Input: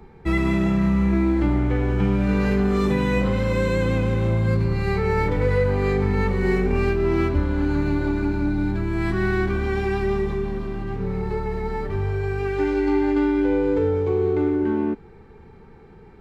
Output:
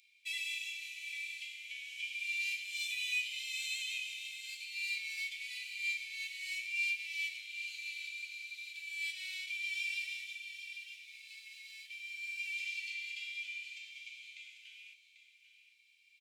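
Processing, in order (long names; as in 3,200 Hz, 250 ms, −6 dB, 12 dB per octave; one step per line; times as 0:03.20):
Chebyshev high-pass with heavy ripple 2,300 Hz, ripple 3 dB
on a send: single-tap delay 792 ms −11.5 dB
on the sum: level +3 dB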